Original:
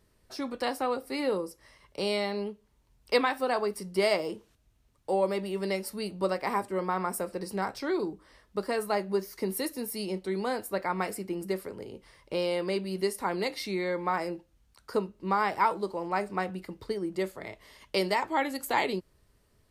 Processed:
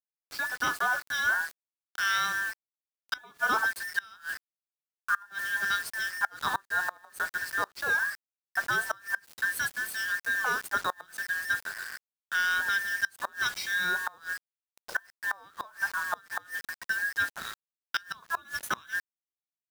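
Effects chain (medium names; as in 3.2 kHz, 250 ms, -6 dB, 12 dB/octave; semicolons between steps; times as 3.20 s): every band turned upside down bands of 2 kHz; high-pass 200 Hz 6 dB/octave; treble shelf 11 kHz -9 dB; bit crusher 7-bit; inverted gate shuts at -17 dBFS, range -27 dB; trim +2 dB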